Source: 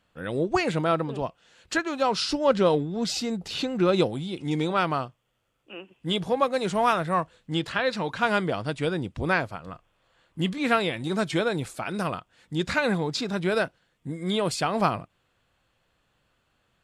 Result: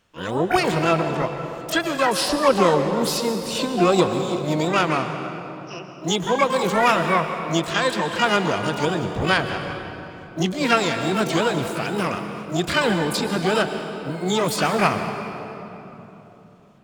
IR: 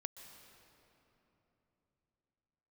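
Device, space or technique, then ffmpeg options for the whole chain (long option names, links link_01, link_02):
shimmer-style reverb: -filter_complex "[0:a]asplit=2[link_01][link_02];[link_02]asetrate=88200,aresample=44100,atempo=0.5,volume=-5dB[link_03];[link_01][link_03]amix=inputs=2:normalize=0[link_04];[1:a]atrim=start_sample=2205[link_05];[link_04][link_05]afir=irnorm=-1:irlink=0,volume=7dB"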